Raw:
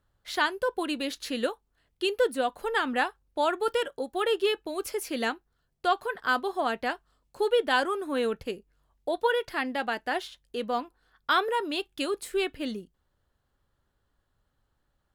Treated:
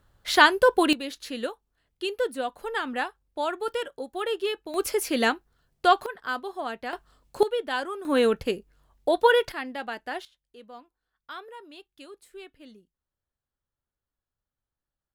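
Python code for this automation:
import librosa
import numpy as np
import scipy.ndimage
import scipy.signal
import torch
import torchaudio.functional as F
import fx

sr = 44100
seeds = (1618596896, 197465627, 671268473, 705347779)

y = fx.gain(x, sr, db=fx.steps((0.0, 9.5), (0.93, -2.5), (4.74, 6.0), (6.06, -4.5), (6.93, 8.0), (7.43, -4.5), (8.05, 6.5), (9.52, -4.0), (10.25, -16.0)))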